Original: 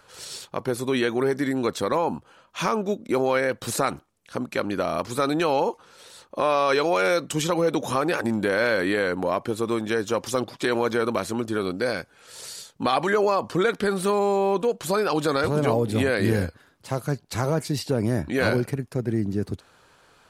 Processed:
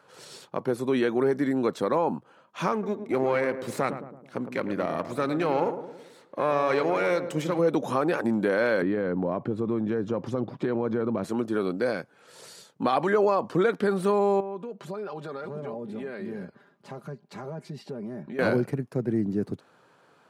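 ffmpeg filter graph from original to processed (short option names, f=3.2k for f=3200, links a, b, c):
-filter_complex "[0:a]asettb=1/sr,asplit=3[a][b][c];[a]atrim=end=2.724[d];[b]atrim=start=2.72:end=7.59,asetpts=PTS-STARTPTS,afade=t=in:d=0.004:c=qsin,afade=t=out:st=4.866:d=0.004:c=qsin,aeval=exprs='if(lt(val(0),0),0.447*val(0),val(0))':c=same,equalizer=f=2.1k:t=o:w=0.29:g=7.5,asplit=2[e][f];[f]adelay=109,lowpass=f=990:p=1,volume=-8.5dB,asplit=2[g][h];[h]adelay=109,lowpass=f=990:p=1,volume=0.54,asplit=2[i][j];[j]adelay=109,lowpass=f=990:p=1,volume=0.54,asplit=2[k][l];[l]adelay=109,lowpass=f=990:p=1,volume=0.54,asplit=2[m][n];[n]adelay=109,lowpass=f=990:p=1,volume=0.54,asplit=2[o][p];[p]adelay=109,lowpass=f=990:p=1,volume=0.54[q];[e][g][i][k][m][o][q]amix=inputs=7:normalize=0,atrim=end_sample=214767[r];[c]atrim=start=7.586[s];[d][r]acrossfade=d=0.004:c1=hsin:c2=qsin[t];[t][s]acrossfade=d=0.004:c1=qsin:c2=hsin,asettb=1/sr,asplit=3[u][v][w];[u]atrim=end=8.824[x];[v]atrim=start=8.82:end=11.24,asetpts=PTS-STARTPTS,afade=t=in:d=0.004:c=qsin,afade=t=out:st=2.416:d=0.004:c=qsin,aemphasis=mode=reproduction:type=riaa,acompressor=threshold=-24dB:ratio=2.5:attack=3.2:release=140:knee=1:detection=peak[y];[w]atrim=start=11.236[z];[x][y]acrossfade=d=0.004:c1=hsin:c2=qsin[aa];[aa][z]acrossfade=d=0.004:c1=qsin:c2=hsin,asettb=1/sr,asplit=3[ab][ac][ad];[ab]atrim=end=14.404[ae];[ac]atrim=start=14.4:end=18.39,asetpts=PTS-STARTPTS,afade=t=in:d=0.004:c=qsin,afade=t=out:st=3.986:d=0.004:c=qsin,highshelf=f=6.9k:g=-12,aecho=1:1:5:0.65,atrim=end_sample=175959,acompressor=threshold=-38dB:ratio=2.5:attack=3.2:release=140:knee=1:detection=peak[af];[ad]atrim=start=18.386[ag];[ae][af]acrossfade=d=0.004:c1=hsin:c2=qsin[ah];[ah][ag]acrossfade=d=0.004:c1=qsin:c2=hsin,highpass=f=130:w=0.5412,highpass=f=130:w=1.3066,highshelf=f=2.1k:g=-11.5"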